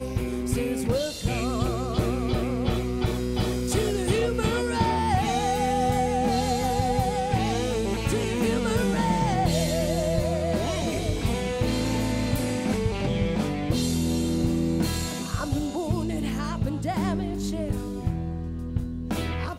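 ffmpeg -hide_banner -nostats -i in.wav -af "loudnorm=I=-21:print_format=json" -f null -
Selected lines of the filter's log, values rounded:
"input_i" : "-26.5",
"input_tp" : "-10.9",
"input_lra" : "4.7",
"input_thresh" : "-36.5",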